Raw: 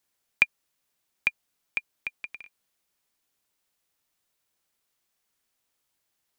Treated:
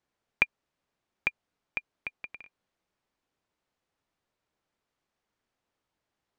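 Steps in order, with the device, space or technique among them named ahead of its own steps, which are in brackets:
through cloth (low-pass filter 6,600 Hz; high-shelf EQ 2,100 Hz −13.5 dB)
level +4 dB

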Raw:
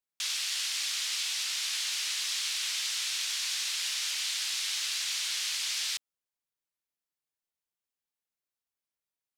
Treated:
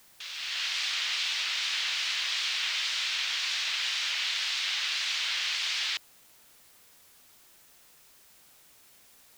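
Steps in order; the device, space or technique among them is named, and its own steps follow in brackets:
dictaphone (band-pass filter 280–3,400 Hz; automatic gain control gain up to 11.5 dB; tape wow and flutter; white noise bed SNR 25 dB)
level −4.5 dB

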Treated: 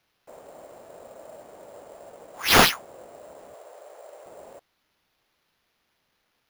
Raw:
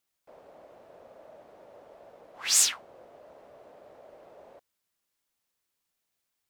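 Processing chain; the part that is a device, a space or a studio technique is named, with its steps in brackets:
0:03.54–0:04.26: inverse Chebyshev high-pass filter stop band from 160 Hz, stop band 50 dB
early companding sampler (sample-rate reduction 8,100 Hz, jitter 0%; log-companded quantiser 8 bits)
level +6.5 dB

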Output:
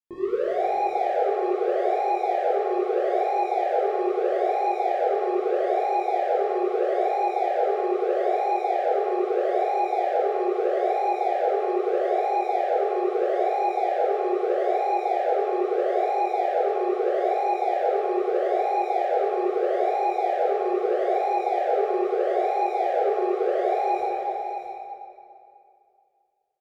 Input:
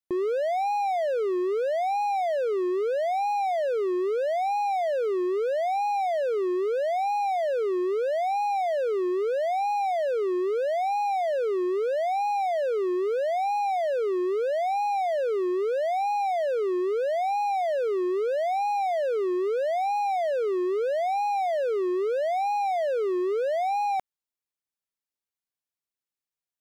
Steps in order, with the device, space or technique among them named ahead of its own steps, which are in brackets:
0:20.82–0:22.35: Butterworth high-pass 280 Hz
swimming-pool hall (convolution reverb RT60 2.5 s, pre-delay 10 ms, DRR −10 dB; high-shelf EQ 4,300 Hz −8 dB)
single-tap delay 630 ms −9 dB
level −8.5 dB

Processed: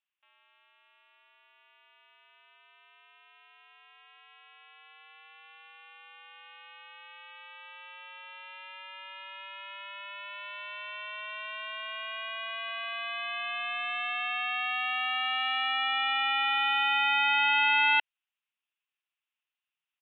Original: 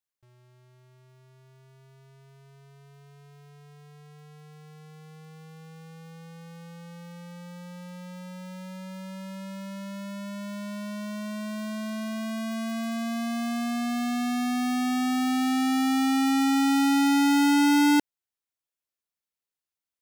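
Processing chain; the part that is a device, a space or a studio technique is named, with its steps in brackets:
musical greeting card (downsampling to 8,000 Hz; high-pass filter 880 Hz 24 dB per octave; parametric band 2,700 Hz +10 dB 0.39 octaves)
level +2.5 dB

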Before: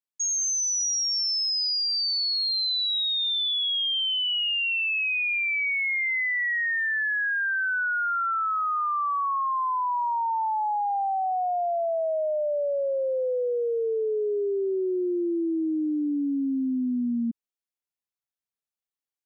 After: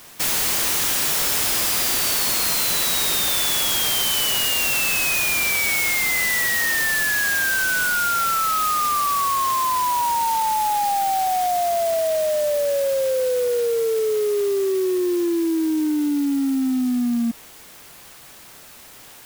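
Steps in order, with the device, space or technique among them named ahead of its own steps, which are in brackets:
early CD player with a faulty converter (converter with a step at zero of −37 dBFS; converter with an unsteady clock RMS 0.06 ms)
level +4.5 dB

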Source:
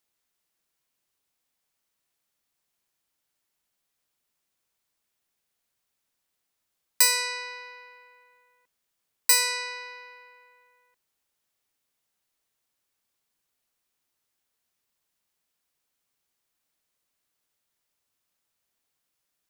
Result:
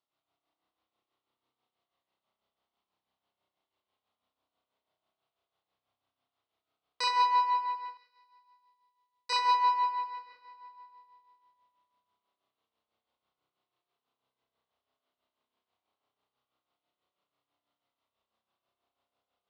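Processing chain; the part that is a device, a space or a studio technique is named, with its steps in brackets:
combo amplifier with spring reverb and tremolo (spring reverb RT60 2.5 s, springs 31 ms, chirp 20 ms, DRR −7.5 dB; amplitude tremolo 6.1 Hz, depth 63%; loudspeaker in its box 79–4,300 Hz, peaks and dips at 170 Hz −6 dB, 690 Hz +6 dB, 1,100 Hz +5 dB, 1,700 Hz −10 dB, 2,400 Hz −6 dB)
0:07.97–0:09.30: first-order pre-emphasis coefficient 0.8
level −3.5 dB

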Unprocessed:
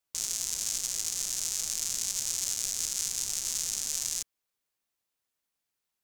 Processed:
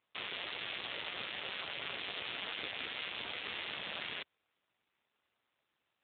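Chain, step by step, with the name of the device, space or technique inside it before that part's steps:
high-pass filter 88 Hz 24 dB per octave
telephone (band-pass filter 320–3,300 Hz; soft clipping −29 dBFS, distortion −14 dB; level +13.5 dB; AMR narrowband 7.4 kbit/s 8,000 Hz)

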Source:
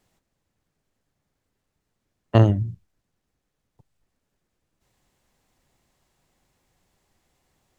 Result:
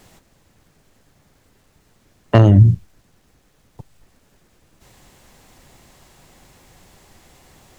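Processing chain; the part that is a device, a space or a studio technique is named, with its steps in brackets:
loud club master (downward compressor 2 to 1, threshold −16 dBFS, peak gain reduction 4 dB; hard clipping −9 dBFS, distortion −23 dB; boost into a limiter +21 dB)
level −1 dB

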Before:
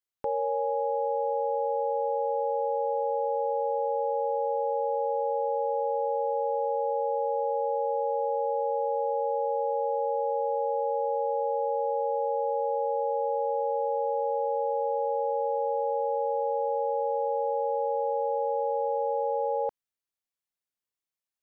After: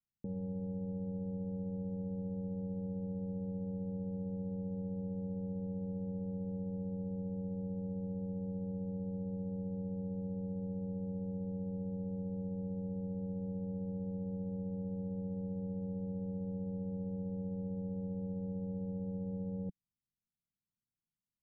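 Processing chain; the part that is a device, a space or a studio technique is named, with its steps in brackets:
overdriven synthesiser ladder filter (soft clipping −29 dBFS, distortion −11 dB; transistor ladder low-pass 230 Hz, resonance 40%)
level +15.5 dB

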